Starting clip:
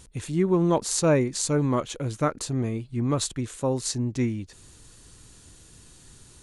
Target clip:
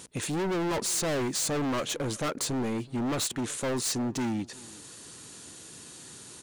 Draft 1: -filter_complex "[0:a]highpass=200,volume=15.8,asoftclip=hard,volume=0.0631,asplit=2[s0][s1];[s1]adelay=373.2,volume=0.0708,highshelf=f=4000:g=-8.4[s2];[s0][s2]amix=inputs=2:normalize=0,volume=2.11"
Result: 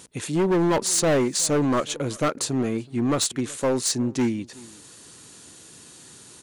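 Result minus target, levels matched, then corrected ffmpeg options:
overload inside the chain: distortion -5 dB
-filter_complex "[0:a]highpass=200,volume=50.1,asoftclip=hard,volume=0.02,asplit=2[s0][s1];[s1]adelay=373.2,volume=0.0708,highshelf=f=4000:g=-8.4[s2];[s0][s2]amix=inputs=2:normalize=0,volume=2.11"

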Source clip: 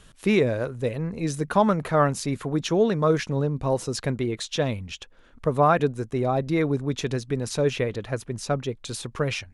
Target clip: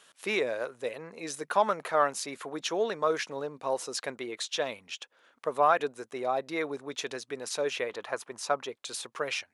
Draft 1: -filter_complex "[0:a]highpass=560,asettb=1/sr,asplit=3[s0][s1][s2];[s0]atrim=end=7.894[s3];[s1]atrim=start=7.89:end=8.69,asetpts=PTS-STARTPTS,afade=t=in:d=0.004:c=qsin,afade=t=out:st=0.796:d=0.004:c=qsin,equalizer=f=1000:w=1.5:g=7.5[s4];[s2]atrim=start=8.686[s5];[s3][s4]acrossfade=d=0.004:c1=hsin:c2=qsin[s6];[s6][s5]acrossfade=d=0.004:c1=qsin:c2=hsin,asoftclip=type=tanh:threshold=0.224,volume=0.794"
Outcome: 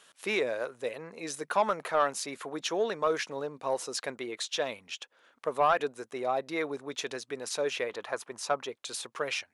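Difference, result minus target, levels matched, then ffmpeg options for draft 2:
saturation: distortion +13 dB
-filter_complex "[0:a]highpass=560,asettb=1/sr,asplit=3[s0][s1][s2];[s0]atrim=end=7.894[s3];[s1]atrim=start=7.89:end=8.69,asetpts=PTS-STARTPTS,afade=t=in:d=0.004:c=qsin,afade=t=out:st=0.796:d=0.004:c=qsin,equalizer=f=1000:w=1.5:g=7.5[s4];[s2]atrim=start=8.686[s5];[s3][s4]acrossfade=d=0.004:c1=hsin:c2=qsin[s6];[s6][s5]acrossfade=d=0.004:c1=qsin:c2=hsin,asoftclip=type=tanh:threshold=0.562,volume=0.794"

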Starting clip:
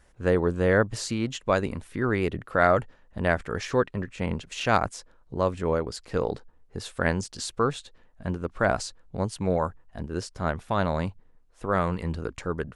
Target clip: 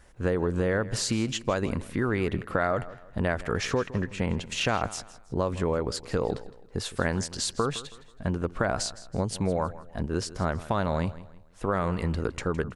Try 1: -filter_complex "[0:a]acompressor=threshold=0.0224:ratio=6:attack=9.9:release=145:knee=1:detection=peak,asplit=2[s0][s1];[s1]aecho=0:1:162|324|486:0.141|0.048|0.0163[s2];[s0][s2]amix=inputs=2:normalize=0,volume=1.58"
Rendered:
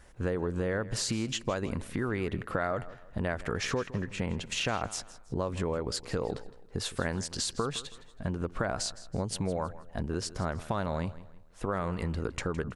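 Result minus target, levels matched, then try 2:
compression: peak gain reduction +5 dB
-filter_complex "[0:a]acompressor=threshold=0.0447:ratio=6:attack=9.9:release=145:knee=1:detection=peak,asplit=2[s0][s1];[s1]aecho=0:1:162|324|486:0.141|0.048|0.0163[s2];[s0][s2]amix=inputs=2:normalize=0,volume=1.58"

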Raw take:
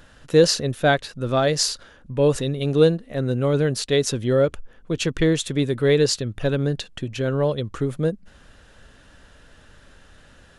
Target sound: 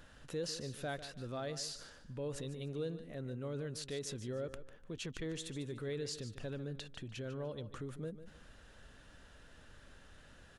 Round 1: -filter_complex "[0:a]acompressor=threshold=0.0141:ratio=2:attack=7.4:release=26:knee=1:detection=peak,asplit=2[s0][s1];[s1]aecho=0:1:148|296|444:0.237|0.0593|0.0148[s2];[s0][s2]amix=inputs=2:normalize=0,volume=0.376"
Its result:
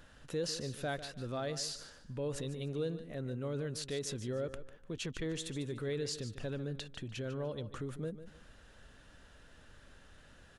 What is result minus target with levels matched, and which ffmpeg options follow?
compression: peak gain reduction -3 dB
-filter_complex "[0:a]acompressor=threshold=0.00668:ratio=2:attack=7.4:release=26:knee=1:detection=peak,asplit=2[s0][s1];[s1]aecho=0:1:148|296|444:0.237|0.0593|0.0148[s2];[s0][s2]amix=inputs=2:normalize=0,volume=0.376"

